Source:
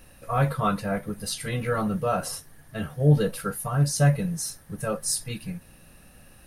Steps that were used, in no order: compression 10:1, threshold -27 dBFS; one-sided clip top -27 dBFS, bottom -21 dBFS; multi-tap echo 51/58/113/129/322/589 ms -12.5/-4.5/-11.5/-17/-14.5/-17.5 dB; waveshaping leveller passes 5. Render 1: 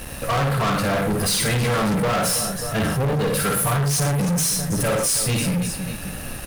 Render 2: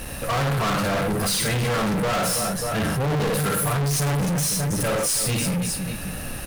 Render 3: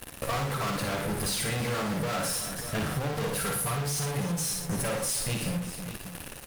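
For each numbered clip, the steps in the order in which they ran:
compression > one-sided clip > multi-tap echo > waveshaping leveller; multi-tap echo > one-sided clip > compression > waveshaping leveller; waveshaping leveller > one-sided clip > multi-tap echo > compression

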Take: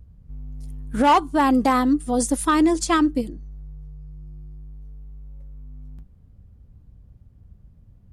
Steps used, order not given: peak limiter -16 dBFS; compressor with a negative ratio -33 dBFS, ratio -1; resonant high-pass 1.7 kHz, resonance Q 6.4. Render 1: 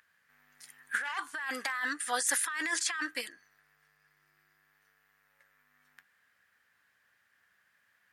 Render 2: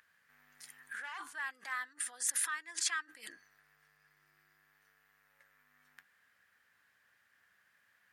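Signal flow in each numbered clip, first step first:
resonant high-pass > peak limiter > compressor with a negative ratio; peak limiter > compressor with a negative ratio > resonant high-pass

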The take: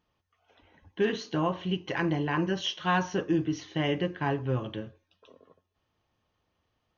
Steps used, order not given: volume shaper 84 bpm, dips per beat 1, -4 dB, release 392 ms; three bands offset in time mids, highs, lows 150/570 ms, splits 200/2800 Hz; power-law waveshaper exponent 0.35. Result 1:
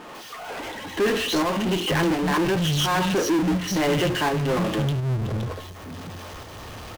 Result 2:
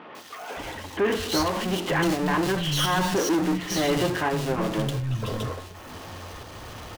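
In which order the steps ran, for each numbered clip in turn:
three bands offset in time > power-law waveshaper > volume shaper; power-law waveshaper > three bands offset in time > volume shaper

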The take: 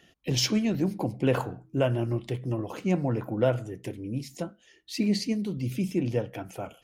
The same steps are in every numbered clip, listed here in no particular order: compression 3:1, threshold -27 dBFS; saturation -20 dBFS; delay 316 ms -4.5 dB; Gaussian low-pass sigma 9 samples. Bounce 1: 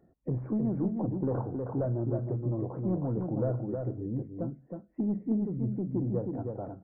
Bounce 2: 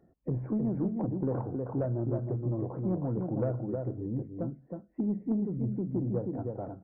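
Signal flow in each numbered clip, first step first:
saturation > Gaussian low-pass > compression > delay; Gaussian low-pass > compression > delay > saturation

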